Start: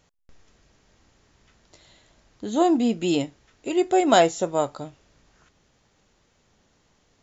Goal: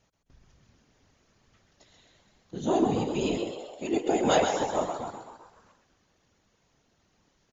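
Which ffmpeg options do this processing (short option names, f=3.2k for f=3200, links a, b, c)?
-filter_complex "[0:a]asplit=8[a][b][c][d][e][f][g][h];[b]adelay=126,afreqshift=75,volume=-6dB[i];[c]adelay=252,afreqshift=150,volume=-11.5dB[j];[d]adelay=378,afreqshift=225,volume=-17dB[k];[e]adelay=504,afreqshift=300,volume=-22.5dB[l];[f]adelay=630,afreqshift=375,volume=-28.1dB[m];[g]adelay=756,afreqshift=450,volume=-33.6dB[n];[h]adelay=882,afreqshift=525,volume=-39.1dB[o];[a][i][j][k][l][m][n][o]amix=inputs=8:normalize=0,asetrate=42336,aresample=44100,afftfilt=real='hypot(re,im)*cos(2*PI*random(0))':imag='hypot(re,im)*sin(2*PI*random(1))':win_size=512:overlap=0.75"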